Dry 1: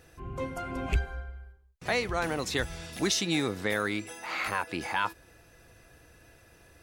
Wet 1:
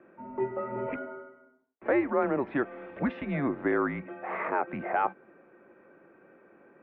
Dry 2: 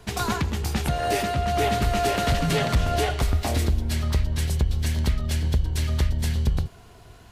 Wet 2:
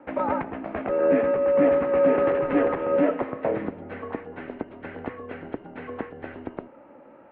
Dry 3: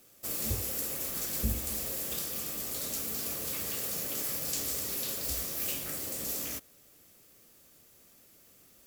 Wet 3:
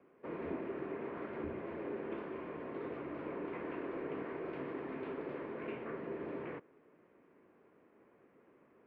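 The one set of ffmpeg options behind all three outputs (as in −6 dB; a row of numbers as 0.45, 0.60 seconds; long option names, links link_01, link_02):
-af "highpass=frequency=430:width_type=q:width=0.5412,highpass=frequency=430:width_type=q:width=1.307,lowpass=frequency=2500:width_type=q:width=0.5176,lowpass=frequency=2500:width_type=q:width=0.7071,lowpass=frequency=2500:width_type=q:width=1.932,afreqshift=-140,acontrast=73,tiltshelf=frequency=1300:gain=9,volume=-6.5dB"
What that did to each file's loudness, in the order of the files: +0.5, +1.5, −10.5 LU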